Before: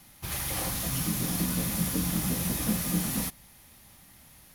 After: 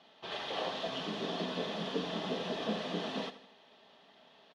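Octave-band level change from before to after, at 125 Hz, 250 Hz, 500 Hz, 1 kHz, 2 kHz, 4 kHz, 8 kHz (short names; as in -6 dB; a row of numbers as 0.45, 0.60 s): -15.0, -9.0, +5.0, +0.5, -3.5, -1.0, -26.5 dB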